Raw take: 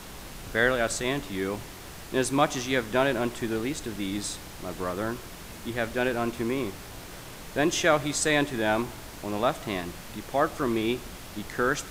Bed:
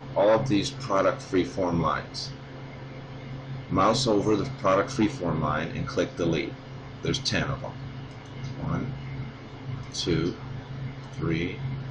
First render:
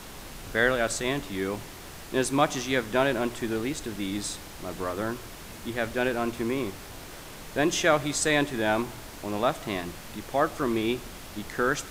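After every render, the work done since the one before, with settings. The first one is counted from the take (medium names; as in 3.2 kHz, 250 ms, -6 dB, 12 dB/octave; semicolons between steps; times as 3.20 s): de-hum 60 Hz, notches 3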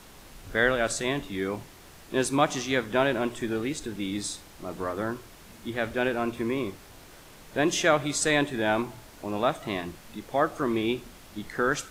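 noise print and reduce 7 dB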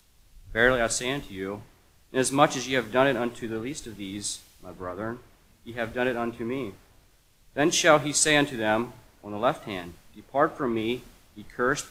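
upward compressor, threshold -47 dBFS; three bands expanded up and down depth 70%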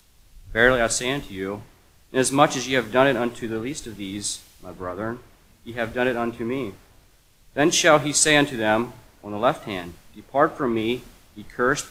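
trim +4 dB; peak limiter -2 dBFS, peak gain reduction 2.5 dB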